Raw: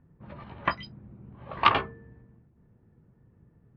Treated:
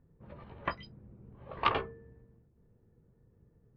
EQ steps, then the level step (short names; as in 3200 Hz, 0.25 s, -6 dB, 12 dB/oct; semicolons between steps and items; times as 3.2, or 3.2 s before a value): low shelf 61 Hz +11.5 dB; bell 460 Hz +8.5 dB 0.64 oct; -8.5 dB